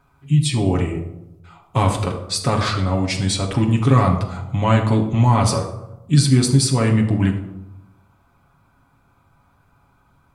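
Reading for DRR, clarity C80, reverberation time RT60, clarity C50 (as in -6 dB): 1.0 dB, 10.5 dB, 0.95 s, 8.0 dB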